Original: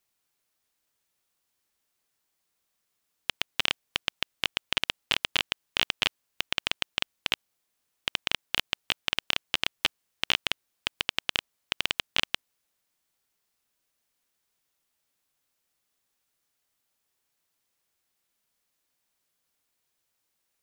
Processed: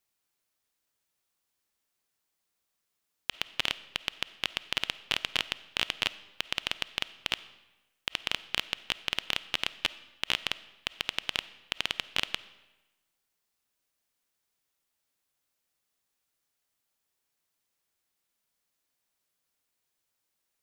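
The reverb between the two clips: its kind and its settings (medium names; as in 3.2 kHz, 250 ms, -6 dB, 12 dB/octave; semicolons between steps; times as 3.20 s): algorithmic reverb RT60 1.1 s, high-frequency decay 0.85×, pre-delay 10 ms, DRR 16 dB; trim -3 dB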